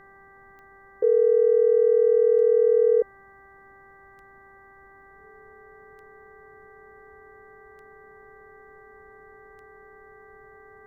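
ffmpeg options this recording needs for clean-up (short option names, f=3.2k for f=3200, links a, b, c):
-af "adeclick=t=4,bandreject=f=392.5:t=h:w=4,bandreject=f=785:t=h:w=4,bandreject=f=1.1775k:t=h:w=4,bandreject=f=1.57k:t=h:w=4,bandreject=f=1.9625k:t=h:w=4,bandreject=f=430:w=30,agate=range=-21dB:threshold=-44dB"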